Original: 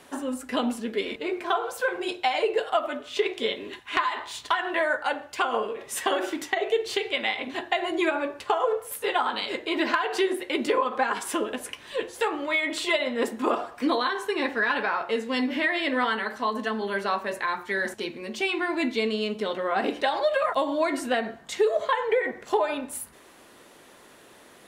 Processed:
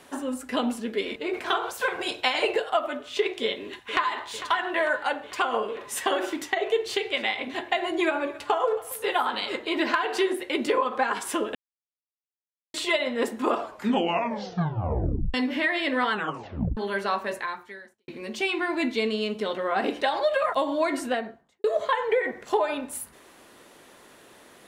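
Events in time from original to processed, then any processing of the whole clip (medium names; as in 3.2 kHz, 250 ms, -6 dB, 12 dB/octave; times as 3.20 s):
1.33–2.56 s: spectral peaks clipped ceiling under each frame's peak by 14 dB
3.43–4.25 s: echo throw 450 ms, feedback 70%, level -13 dB
6.89–10.33 s: delay 274 ms -20 dB
11.55–12.74 s: mute
13.56 s: tape stop 1.78 s
16.12 s: tape stop 0.65 s
17.32–18.08 s: fade out quadratic
20.98–21.64 s: studio fade out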